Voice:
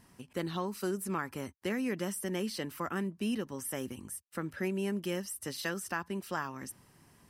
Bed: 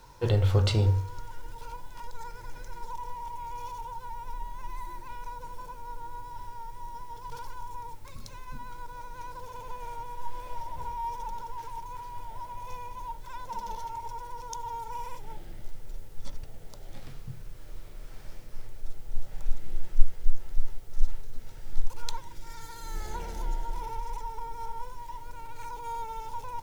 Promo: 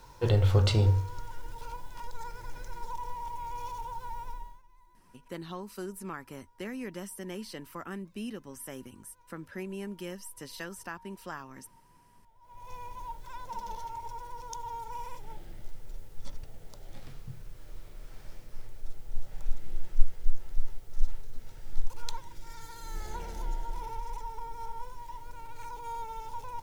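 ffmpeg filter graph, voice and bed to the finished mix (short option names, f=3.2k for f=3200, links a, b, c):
-filter_complex "[0:a]adelay=4950,volume=-5dB[a];[1:a]volume=20.5dB,afade=t=out:st=4.2:d=0.42:silence=0.0707946,afade=t=in:st=12.41:d=0.42:silence=0.0944061[b];[a][b]amix=inputs=2:normalize=0"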